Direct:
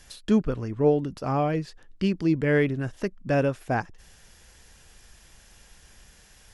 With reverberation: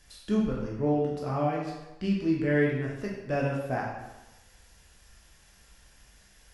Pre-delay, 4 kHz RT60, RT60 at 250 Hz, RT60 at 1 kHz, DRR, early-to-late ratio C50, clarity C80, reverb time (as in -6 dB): 10 ms, 0.85 s, 1.0 s, 1.1 s, -3.5 dB, 2.0 dB, 5.0 dB, 1.0 s